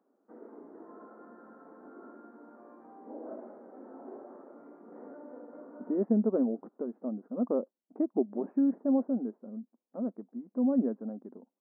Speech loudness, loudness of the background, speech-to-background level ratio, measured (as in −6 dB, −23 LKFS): −31.5 LKFS, −49.5 LKFS, 18.0 dB